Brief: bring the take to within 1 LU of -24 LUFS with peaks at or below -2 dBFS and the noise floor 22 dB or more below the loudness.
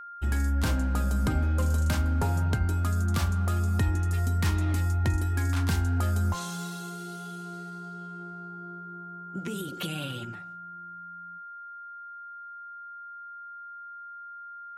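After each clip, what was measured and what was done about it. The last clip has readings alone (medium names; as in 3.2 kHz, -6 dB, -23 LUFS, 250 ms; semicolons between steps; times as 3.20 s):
steady tone 1.4 kHz; tone level -40 dBFS; loudness -29.0 LUFS; peak level -16.5 dBFS; loudness target -24.0 LUFS
-> band-stop 1.4 kHz, Q 30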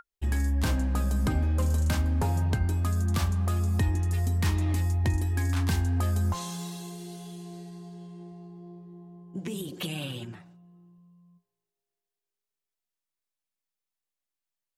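steady tone not found; loudness -28.0 LUFS; peak level -17.0 dBFS; loudness target -24.0 LUFS
-> trim +4 dB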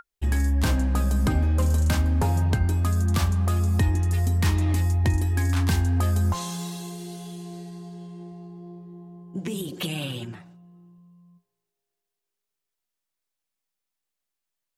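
loudness -24.0 LUFS; peak level -13.0 dBFS; noise floor -84 dBFS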